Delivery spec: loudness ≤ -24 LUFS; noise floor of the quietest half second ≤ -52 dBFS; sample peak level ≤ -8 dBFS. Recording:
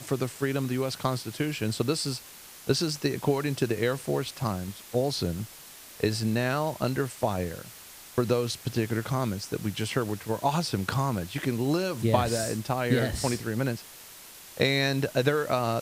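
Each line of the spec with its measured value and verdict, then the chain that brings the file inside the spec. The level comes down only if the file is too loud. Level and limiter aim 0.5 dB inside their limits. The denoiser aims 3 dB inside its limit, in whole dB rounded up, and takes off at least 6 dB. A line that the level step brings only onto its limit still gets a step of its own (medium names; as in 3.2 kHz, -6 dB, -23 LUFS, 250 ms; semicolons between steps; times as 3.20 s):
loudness -28.5 LUFS: pass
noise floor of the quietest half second -47 dBFS: fail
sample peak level -6.5 dBFS: fail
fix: noise reduction 8 dB, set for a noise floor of -47 dBFS; peak limiter -8.5 dBFS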